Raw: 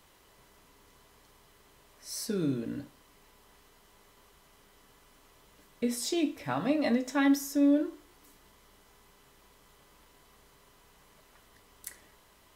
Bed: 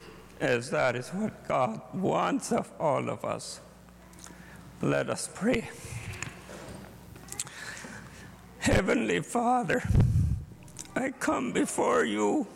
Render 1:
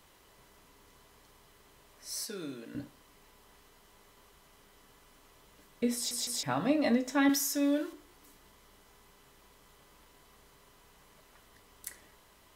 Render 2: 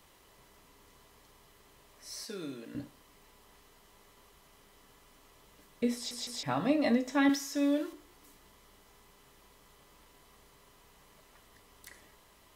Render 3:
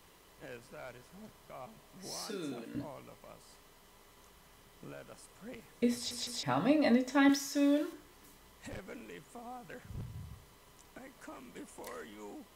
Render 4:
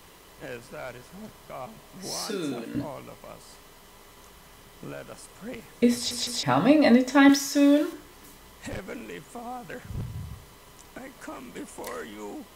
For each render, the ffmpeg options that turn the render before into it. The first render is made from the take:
-filter_complex "[0:a]asettb=1/sr,asplit=3[a][b][c];[a]atrim=end=2.254[d];[b]atrim=start=2.25:end=2.75,asetpts=PTS-STARTPTS,afade=t=in:d=0.004:c=qsin,afade=t=out:st=0.496:d=0.004:c=qsin,highpass=f=1k:p=1[e];[c]atrim=start=2.746[f];[d][e]acrossfade=d=0.004:c1=hsin:c2=qsin[g];[g][f]acrossfade=d=0.004:c1=qsin:c2=hsin,asettb=1/sr,asplit=3[h][i][j];[h]atrim=end=7.294[k];[i]atrim=start=7.29:end=7.93,asetpts=PTS-STARTPTS,afade=t=in:d=0.004:c=qsin,afade=t=out:st=0.636:d=0.004:c=qsin,tiltshelf=f=800:g=-7[l];[j]atrim=start=7.926[m];[k][l]acrossfade=d=0.004:c1=hsin:c2=qsin[n];[n][m]acrossfade=d=0.004:c1=qsin:c2=hsin,asplit=4[o][p][q][r];[o]atrim=end=6.112[s];[p]atrim=start=5.948:end=6.112[t];[q]atrim=start=5.948:end=6.112[u];[r]atrim=start=6.428[v];[s][t]acrossfade=d=0.004:c1=hsin:c2=hsin[w];[w][u]acrossfade=d=0.004:c1=hsin:c2=hsin[x];[x][v]acrossfade=d=0.004:c1=hsin:c2=hsin"
-filter_complex "[0:a]bandreject=f=1.5k:w=17,acrossover=split=5300[a][b];[b]acompressor=threshold=-48dB:ratio=4:attack=1:release=60[c];[a][c]amix=inputs=2:normalize=0"
-filter_complex "[1:a]volume=-21.5dB[a];[0:a][a]amix=inputs=2:normalize=0"
-af "volume=9.5dB"

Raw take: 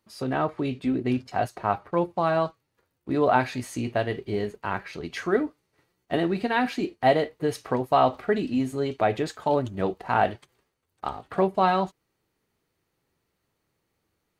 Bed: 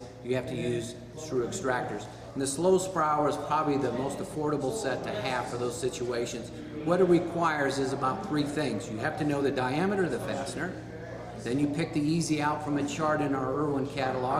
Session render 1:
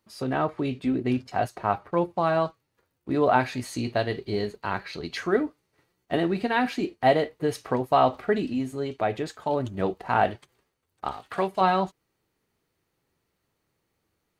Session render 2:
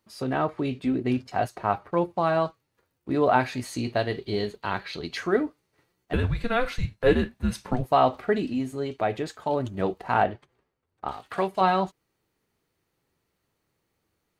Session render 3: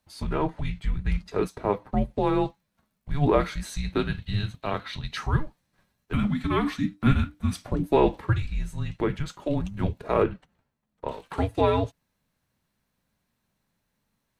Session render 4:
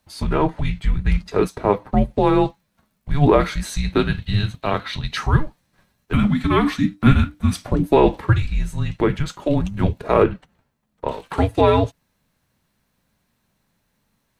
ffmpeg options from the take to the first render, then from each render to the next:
-filter_complex "[0:a]asettb=1/sr,asplit=3[a][b][c];[a]atrim=end=3.654[d];[b]atrim=start=3.65:end=5.17,asetpts=PTS-STARTPTS,afade=t=in:d=0.004:c=qsin,afade=t=out:st=1.516:d=0.004:c=qsin,equalizer=f=4.2k:w=4.8:g=11[e];[c]atrim=start=5.166[f];[d][e]acrossfade=d=0.004:c1=hsin:c2=qsin[g];[g][f]acrossfade=d=0.004:c1=qsin:c2=hsin,asettb=1/sr,asplit=3[h][i][j];[h]atrim=end=11.114[k];[i]atrim=start=11.11:end=11.61,asetpts=PTS-STARTPTS,afade=t=in:d=0.004:c=qsin,afade=t=out:st=0.496:d=0.004:c=qsin,tiltshelf=f=970:g=-7[l];[j]atrim=start=11.606[m];[k][l]acrossfade=d=0.004:c1=hsin:c2=qsin[n];[n][m]acrossfade=d=0.004:c1=qsin:c2=hsin,asplit=3[o][p][q];[o]atrim=end=8.532[r];[p]atrim=start=8.528:end=9.602,asetpts=PTS-STARTPTS,volume=-3dB[s];[q]atrim=start=9.598[t];[r][s]acrossfade=d=0.004:c1=hsin:c2=hsin[u];[u][t]acrossfade=d=0.004:c1=hsin:c2=hsin"
-filter_complex "[0:a]asettb=1/sr,asplit=3[a][b][c];[a]atrim=end=4.194[d];[b]atrim=start=4.19:end=5.06,asetpts=PTS-STARTPTS,afade=t=in:d=0.004:c=qsin,afade=t=out:st=0.866:d=0.004:c=qsin,equalizer=f=3.4k:w=3.2:g=7[e];[c]atrim=start=5.056[f];[d][e]acrossfade=d=0.004:c1=hsin:c2=qsin[g];[g][f]acrossfade=d=0.004:c1=qsin:c2=hsin,asettb=1/sr,asplit=3[h][i][j];[h]atrim=end=6.134[k];[i]atrim=start=6.13:end=7.85,asetpts=PTS-STARTPTS,afade=t=in:d=0.004:c=qsin,afade=t=out:st=1.716:d=0.004:c=qsin,afreqshift=-240[l];[j]atrim=start=7.846[m];[k][l]acrossfade=d=0.004:c1=hsin:c2=qsin[n];[n][m]acrossfade=d=0.004:c1=qsin:c2=hsin,asettb=1/sr,asplit=3[o][p][q];[o]atrim=end=10.234[r];[p]atrim=start=10.23:end=11.09,asetpts=PTS-STARTPTS,afade=t=in:d=0.004:c=qsin,afade=t=out:st=0.856:d=0.004:c=qsin,lowpass=f=1.6k:p=1[s];[q]atrim=start=11.086[t];[r][s]acrossfade=d=0.004:c1=hsin:c2=qsin[u];[u][t]acrossfade=d=0.004:c1=qsin:c2=hsin"
-af "afreqshift=-300"
-af "volume=7.5dB,alimiter=limit=-2dB:level=0:latency=1"

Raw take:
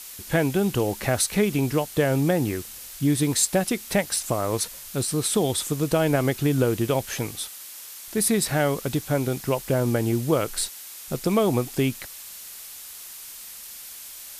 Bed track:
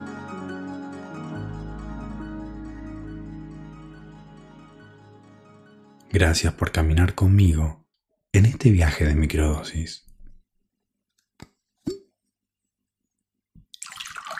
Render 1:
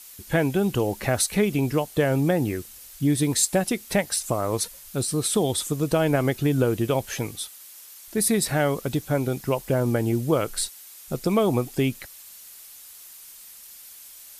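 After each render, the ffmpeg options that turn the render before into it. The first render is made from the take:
-af "afftdn=nr=7:nf=-41"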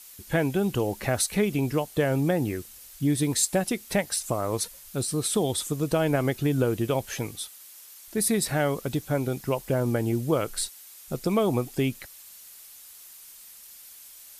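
-af "volume=-2.5dB"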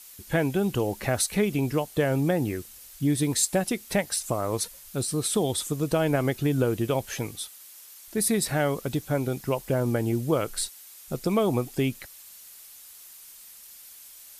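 -af anull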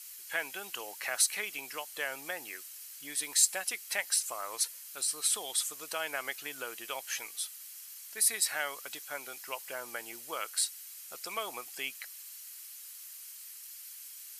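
-af "highpass=1.4k,bandreject=f=3.6k:w=12"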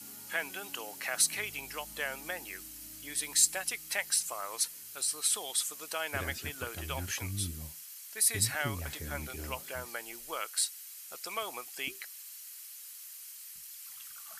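-filter_complex "[1:a]volume=-22dB[a];[0:a][a]amix=inputs=2:normalize=0"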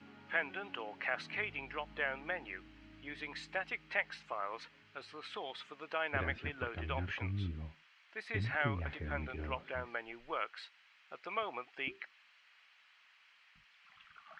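-af "lowpass=f=2.7k:w=0.5412,lowpass=f=2.7k:w=1.3066"

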